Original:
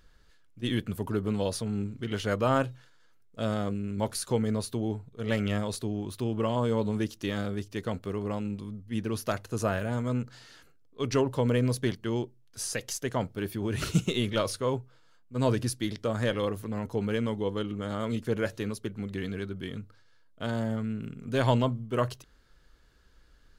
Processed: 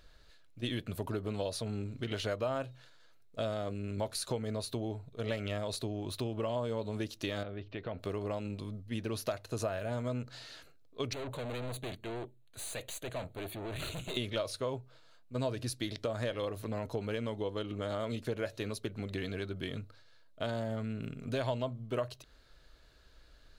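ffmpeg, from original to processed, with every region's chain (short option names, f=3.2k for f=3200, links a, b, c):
-filter_complex "[0:a]asettb=1/sr,asplit=3[a][b][c];[a]atrim=end=7.434[d];[b]atrim=start=7.43:end=7.99,asetpts=PTS-STARTPTS,afade=t=in:d=0.004:c=qsin,afade=t=out:st=0.556:d=0.004:c=qsin,lowpass=f=3.2k:w=0.5412,lowpass=f=3.2k:w=1.3066,acompressor=threshold=-37dB:ratio=3:attack=3.2:release=140:knee=1:detection=peak[e];[c]atrim=start=7.986[f];[d][e]acrossfade=d=0.004:c1=hsin:c2=qsin[g];[g][f]acrossfade=d=0.004:c1=qsin:c2=hsin,asettb=1/sr,asplit=3[h][i][j];[h]atrim=end=11.134[k];[i]atrim=start=11.13:end=14.17,asetpts=PTS-STARTPTS,afade=t=in:d=0.004:c=qsin,afade=t=out:st=3.036:d=0.004:c=qsin,aeval=exprs='(tanh(79.4*val(0)+0.4)-tanh(0.4))/79.4':c=same,asuperstop=centerf=5300:order=4:qfactor=2.3[l];[j]atrim=start=14.166[m];[k][l]acrossfade=d=0.004:c1=hsin:c2=qsin[n];[n][m]acrossfade=d=0.004:c1=qsin:c2=hsin,equalizer=f=200:t=o:w=0.33:g=-6,equalizer=f=630:t=o:w=0.33:g=9,equalizer=f=2.5k:t=o:w=0.33:g=4,equalizer=f=4k:t=o:w=0.33:g=8,acompressor=threshold=-33dB:ratio=4"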